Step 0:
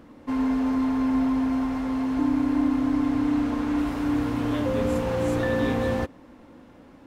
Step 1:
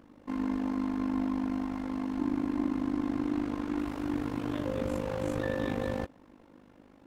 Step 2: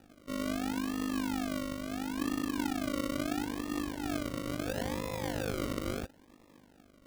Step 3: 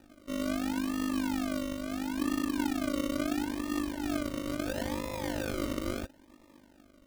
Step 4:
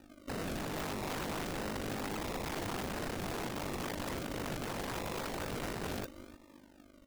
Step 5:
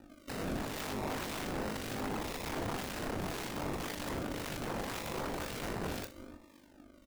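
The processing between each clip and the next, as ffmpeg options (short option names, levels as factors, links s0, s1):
-af "tremolo=f=50:d=0.857,volume=0.631"
-af "acrusher=samples=41:mix=1:aa=0.000001:lfo=1:lforange=24.6:lforate=0.74,volume=0.708"
-af "aecho=1:1:3.3:0.47"
-af "aecho=1:1:302:0.126,aeval=exprs='(mod(44.7*val(0)+1,2)-1)/44.7':c=same"
-filter_complex "[0:a]acrossover=split=1700[s0][s1];[s0]aeval=exprs='val(0)*(1-0.5/2+0.5/2*cos(2*PI*1.9*n/s))':c=same[s2];[s1]aeval=exprs='val(0)*(1-0.5/2-0.5/2*cos(2*PI*1.9*n/s))':c=same[s3];[s2][s3]amix=inputs=2:normalize=0,asplit=2[s4][s5];[s5]aecho=0:1:27|65:0.316|0.168[s6];[s4][s6]amix=inputs=2:normalize=0,volume=1.26"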